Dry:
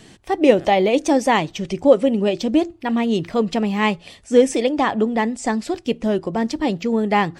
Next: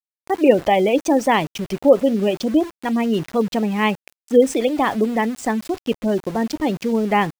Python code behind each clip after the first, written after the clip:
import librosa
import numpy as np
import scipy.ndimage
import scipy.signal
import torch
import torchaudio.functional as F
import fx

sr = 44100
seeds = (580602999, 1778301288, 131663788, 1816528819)

y = fx.spec_gate(x, sr, threshold_db=-30, keep='strong')
y = np.where(np.abs(y) >= 10.0 ** (-31.5 / 20.0), y, 0.0)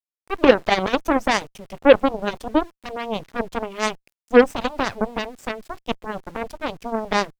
y = fx.vibrato(x, sr, rate_hz=0.36, depth_cents=7.0)
y = fx.cheby_harmonics(y, sr, harmonics=(7, 8), levels_db=(-15, -23), full_scale_db=-1.0)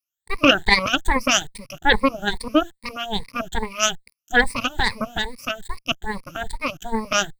y = fx.spec_ripple(x, sr, per_octave=0.92, drift_hz=2.4, depth_db=22)
y = fx.peak_eq(y, sr, hz=480.0, db=-13.0, octaves=2.9)
y = F.gain(torch.from_numpy(y), 4.0).numpy()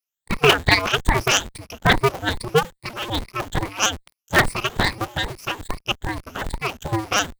y = fx.cycle_switch(x, sr, every=2, mode='inverted')